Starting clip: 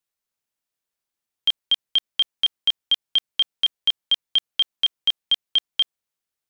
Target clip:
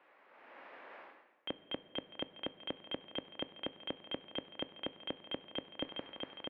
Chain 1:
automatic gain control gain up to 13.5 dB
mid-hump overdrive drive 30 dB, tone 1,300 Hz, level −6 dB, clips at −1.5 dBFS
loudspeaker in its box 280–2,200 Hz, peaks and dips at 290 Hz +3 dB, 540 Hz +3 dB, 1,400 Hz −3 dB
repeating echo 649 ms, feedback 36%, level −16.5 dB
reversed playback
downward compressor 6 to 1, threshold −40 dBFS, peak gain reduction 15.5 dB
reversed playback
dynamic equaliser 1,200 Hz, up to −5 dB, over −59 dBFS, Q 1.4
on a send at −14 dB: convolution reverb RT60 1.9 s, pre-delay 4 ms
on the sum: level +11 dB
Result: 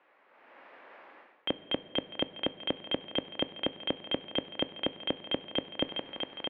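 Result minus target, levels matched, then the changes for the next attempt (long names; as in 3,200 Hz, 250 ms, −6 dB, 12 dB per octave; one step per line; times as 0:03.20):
downward compressor: peak gain reduction −9.5 dB
change: downward compressor 6 to 1, threshold −51.5 dBFS, peak gain reduction 25 dB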